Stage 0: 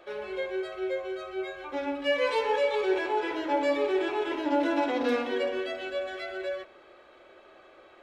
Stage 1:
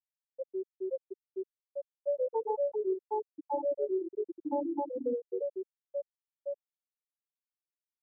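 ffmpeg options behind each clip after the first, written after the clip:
-filter_complex "[0:a]highshelf=f=3600:g=-11.5,afftfilt=real='re*gte(hypot(re,im),0.316)':imag='im*gte(hypot(re,im),0.316)':win_size=1024:overlap=0.75,acrossover=split=330|1100[s0][s1][s2];[s0]acompressor=threshold=0.00891:ratio=4[s3];[s1]acompressor=threshold=0.0316:ratio=4[s4];[s2]acompressor=threshold=0.00447:ratio=4[s5];[s3][s4][s5]amix=inputs=3:normalize=0"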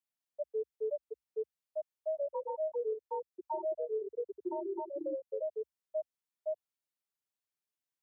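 -af "alimiter=level_in=1.88:limit=0.0631:level=0:latency=1:release=376,volume=0.531,afreqshift=58,volume=1.12"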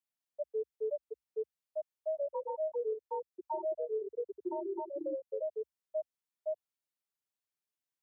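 -af anull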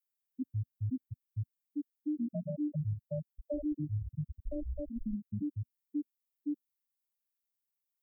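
-af "afreqshift=-330,afftdn=nr=12:nf=-45,aemphasis=mode=production:type=50fm,volume=1.12"

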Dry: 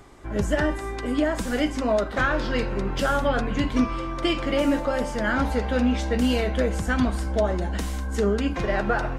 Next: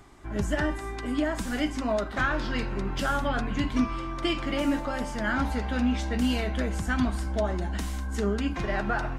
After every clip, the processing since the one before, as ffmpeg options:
-af "equalizer=f=500:t=o:w=0.37:g=-9.5,volume=0.708"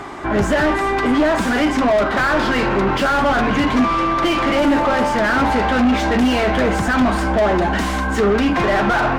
-filter_complex "[0:a]asplit=2[s0][s1];[s1]highpass=f=720:p=1,volume=31.6,asoftclip=type=tanh:threshold=0.224[s2];[s0][s2]amix=inputs=2:normalize=0,lowpass=f=1100:p=1,volume=0.501,volume=2"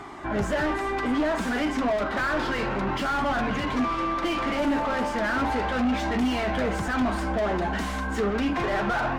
-af "flanger=delay=0.9:depth=3.7:regen=-69:speed=0.32:shape=sinusoidal,volume=0.562"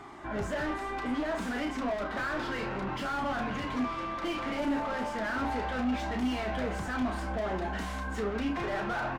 -filter_complex "[0:a]asplit=2[s0][s1];[s1]adelay=32,volume=0.398[s2];[s0][s2]amix=inputs=2:normalize=0,volume=0.422"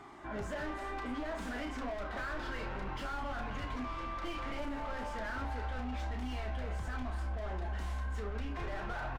-filter_complex "[0:a]asplit=2[s0][s1];[s1]adelay=260,highpass=300,lowpass=3400,asoftclip=type=hard:threshold=0.0299,volume=0.316[s2];[s0][s2]amix=inputs=2:normalize=0,asubboost=boost=7:cutoff=76,acompressor=threshold=0.0355:ratio=6,volume=0.562"

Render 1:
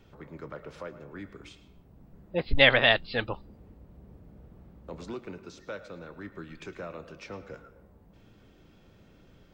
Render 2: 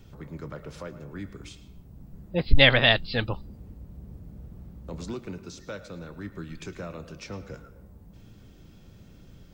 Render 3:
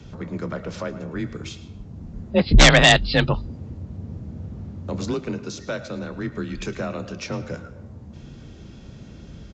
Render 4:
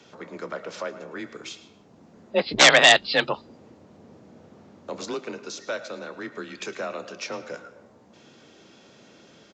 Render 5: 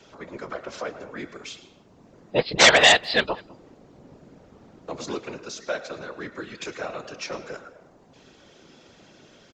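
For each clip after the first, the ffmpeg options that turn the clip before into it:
-af "bass=f=250:g=9,treble=f=4000:g=10"
-af "afreqshift=28,aresample=16000,aeval=exprs='0.891*sin(PI/2*3.16*val(0)/0.891)':c=same,aresample=44100,volume=0.562"
-af "highpass=430"
-filter_complex "[0:a]afftfilt=real='hypot(re,im)*cos(2*PI*random(0))':imag='hypot(re,im)*sin(2*PI*random(1))':win_size=512:overlap=0.75,asplit=2[s0][s1];[s1]adelay=200,highpass=300,lowpass=3400,asoftclip=type=hard:threshold=0.141,volume=0.0708[s2];[s0][s2]amix=inputs=2:normalize=0,volume=2"

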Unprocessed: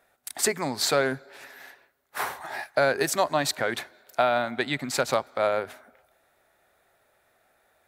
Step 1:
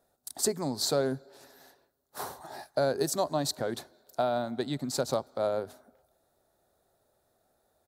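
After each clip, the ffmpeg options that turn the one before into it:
-af "firequalizer=gain_entry='entry(190,0);entry(2200,-21);entry(4100,-4)':delay=0.05:min_phase=1"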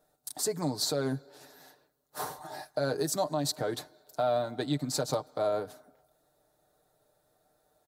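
-af "aecho=1:1:6.6:0.64,alimiter=limit=0.112:level=0:latency=1:release=145"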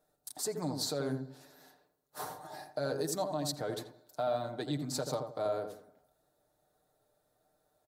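-filter_complex "[0:a]asplit=2[s0][s1];[s1]adelay=84,lowpass=f=900:p=1,volume=0.596,asplit=2[s2][s3];[s3]adelay=84,lowpass=f=900:p=1,volume=0.33,asplit=2[s4][s5];[s5]adelay=84,lowpass=f=900:p=1,volume=0.33,asplit=2[s6][s7];[s7]adelay=84,lowpass=f=900:p=1,volume=0.33[s8];[s0][s2][s4][s6][s8]amix=inputs=5:normalize=0,volume=0.562"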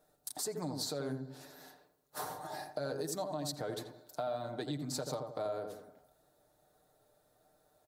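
-af "acompressor=threshold=0.00708:ratio=2.5,volume=1.68"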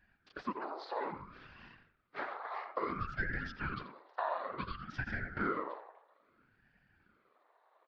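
-af "afftfilt=real='hypot(re,im)*cos(2*PI*random(0))':imag='hypot(re,im)*sin(2*PI*random(1))':win_size=512:overlap=0.75,highpass=f=360:t=q:w=0.5412,highpass=f=360:t=q:w=1.307,lowpass=f=3200:t=q:w=0.5176,lowpass=f=3200:t=q:w=0.7071,lowpass=f=3200:t=q:w=1.932,afreqshift=220,aeval=exprs='val(0)*sin(2*PI*490*n/s+490*0.7/0.59*sin(2*PI*0.59*n/s))':c=same,volume=3.55"

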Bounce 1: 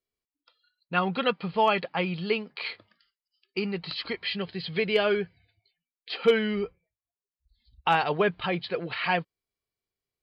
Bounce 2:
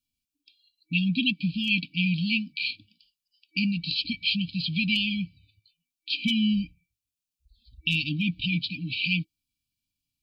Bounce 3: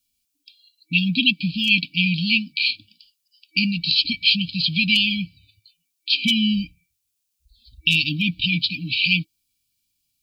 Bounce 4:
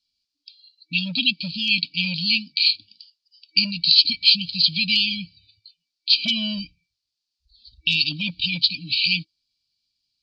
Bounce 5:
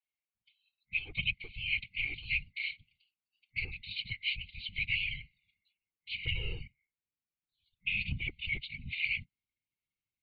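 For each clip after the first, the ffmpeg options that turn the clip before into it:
-af "afftfilt=real='re*(1-between(b*sr/4096,320,2300))':imag='im*(1-between(b*sr/4096,320,2300))':win_size=4096:overlap=0.75,volume=2.11"
-af "highshelf=f=3000:g=11,volume=1.41"
-filter_complex "[0:a]acrossover=split=1100[s0][s1];[s0]volume=9.44,asoftclip=hard,volume=0.106[s2];[s1]lowpass=f=4600:t=q:w=5.6[s3];[s2][s3]amix=inputs=2:normalize=0,volume=0.447"
-af "highpass=f=360:t=q:w=0.5412,highpass=f=360:t=q:w=1.307,lowpass=f=2700:t=q:w=0.5176,lowpass=f=2700:t=q:w=0.7071,lowpass=f=2700:t=q:w=1.932,afreqshift=-180,afftfilt=real='hypot(re,im)*cos(2*PI*random(0))':imag='hypot(re,im)*sin(2*PI*random(1))':win_size=512:overlap=0.75,asubboost=boost=8.5:cutoff=240"

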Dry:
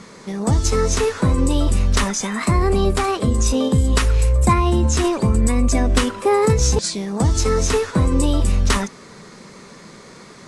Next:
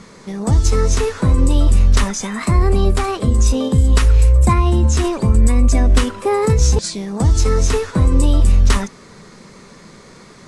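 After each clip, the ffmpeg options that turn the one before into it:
-af "lowshelf=f=80:g=10,volume=0.891"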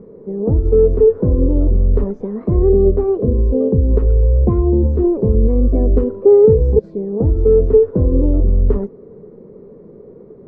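-af "lowpass=f=440:t=q:w=4.3,volume=0.794"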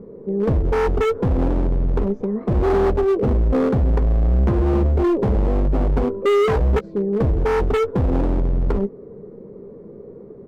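-filter_complex "[0:a]volume=5.96,asoftclip=hard,volume=0.168,asplit=2[s0][s1];[s1]adelay=15,volume=0.224[s2];[s0][s2]amix=inputs=2:normalize=0"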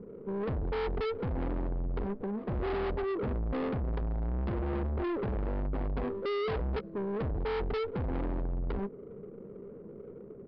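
-af "adynamicsmooth=sensitivity=6:basefreq=770,asoftclip=type=tanh:threshold=0.0668,aresample=11025,aresample=44100,volume=0.447"

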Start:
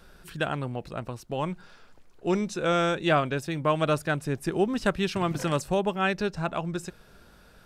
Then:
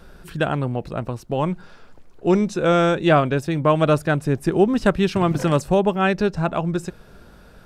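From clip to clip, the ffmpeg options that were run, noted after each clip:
-af "tiltshelf=f=1200:g=3.5,volume=1.88"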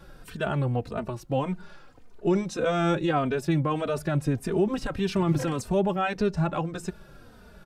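-filter_complex "[0:a]alimiter=limit=0.224:level=0:latency=1:release=28,asplit=2[s0][s1];[s1]adelay=3.1,afreqshift=-1.7[s2];[s0][s2]amix=inputs=2:normalize=1"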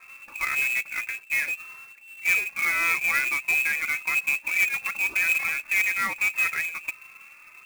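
-af "lowpass=f=2300:t=q:w=0.5098,lowpass=f=2300:t=q:w=0.6013,lowpass=f=2300:t=q:w=0.9,lowpass=f=2300:t=q:w=2.563,afreqshift=-2700,acrusher=bits=2:mode=log:mix=0:aa=0.000001"

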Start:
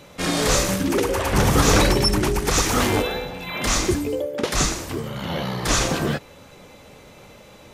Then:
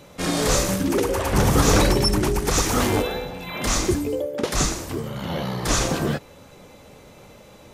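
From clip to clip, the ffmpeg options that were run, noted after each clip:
-af "equalizer=f=2500:w=0.58:g=-3.5"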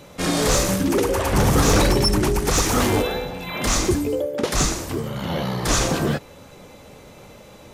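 -af "asoftclip=type=tanh:threshold=0.266,volume=1.33"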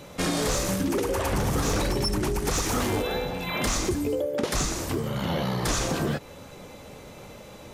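-af "acompressor=threshold=0.0708:ratio=6"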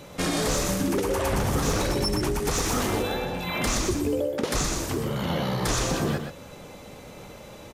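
-af "aecho=1:1:124:0.447"

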